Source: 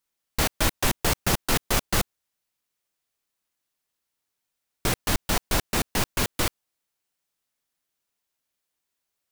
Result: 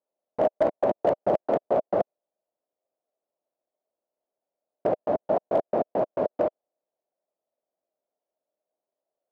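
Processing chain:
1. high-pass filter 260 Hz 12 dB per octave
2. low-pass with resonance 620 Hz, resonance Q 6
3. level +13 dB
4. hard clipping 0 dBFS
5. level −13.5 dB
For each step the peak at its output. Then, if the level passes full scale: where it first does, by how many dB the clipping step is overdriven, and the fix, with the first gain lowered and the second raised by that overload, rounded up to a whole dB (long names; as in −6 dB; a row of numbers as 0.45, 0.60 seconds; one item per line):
−9.0, −9.0, +4.0, 0.0, −13.5 dBFS
step 3, 4.0 dB
step 3 +9 dB, step 5 −9.5 dB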